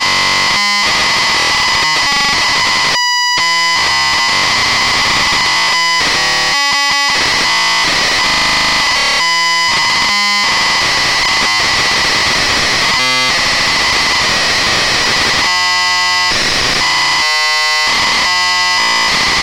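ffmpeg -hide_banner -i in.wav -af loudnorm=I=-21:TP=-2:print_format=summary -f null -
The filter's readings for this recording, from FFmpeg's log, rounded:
Input Integrated:     -9.6 LUFS
Input True Peak:      -1.7 dBTP
Input LRA:             0.2 LU
Input Threshold:     -19.6 LUFS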